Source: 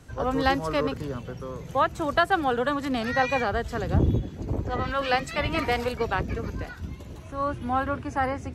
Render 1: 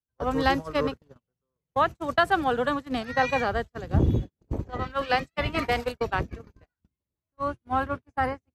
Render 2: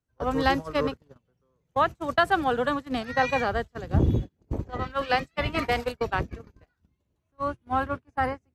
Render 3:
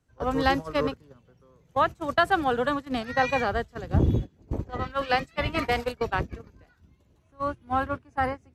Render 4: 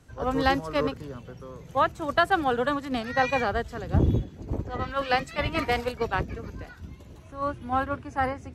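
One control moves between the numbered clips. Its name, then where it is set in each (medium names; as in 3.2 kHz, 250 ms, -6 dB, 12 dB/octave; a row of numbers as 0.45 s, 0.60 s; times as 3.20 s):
gate, range: -49 dB, -35 dB, -22 dB, -6 dB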